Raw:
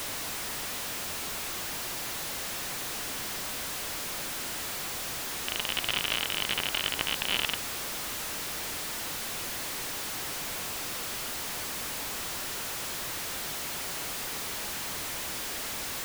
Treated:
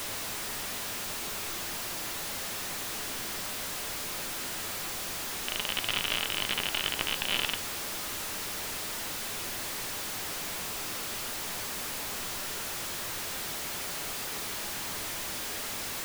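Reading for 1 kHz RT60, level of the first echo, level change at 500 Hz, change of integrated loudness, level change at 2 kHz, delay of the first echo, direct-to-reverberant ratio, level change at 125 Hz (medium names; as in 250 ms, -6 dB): 0.45 s, no echo, -0.5 dB, -0.5 dB, -0.5 dB, no echo, 10.0 dB, -0.5 dB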